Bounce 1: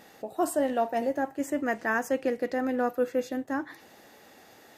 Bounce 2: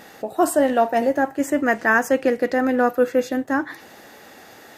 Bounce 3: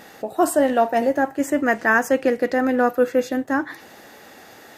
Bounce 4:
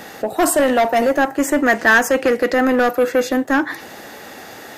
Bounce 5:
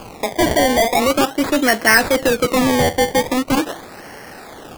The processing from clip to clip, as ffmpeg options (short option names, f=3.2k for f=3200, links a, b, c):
-af "equalizer=f=1.5k:t=o:w=0.77:g=3,volume=8.5dB"
-af anull
-filter_complex "[0:a]acrossover=split=210|1800[a][b][c];[a]acompressor=threshold=-42dB:ratio=6[d];[b]asoftclip=type=tanh:threshold=-20dB[e];[d][e][c]amix=inputs=3:normalize=0,volume=8.5dB"
-af "acrusher=samples=23:mix=1:aa=0.000001:lfo=1:lforange=23:lforate=0.42"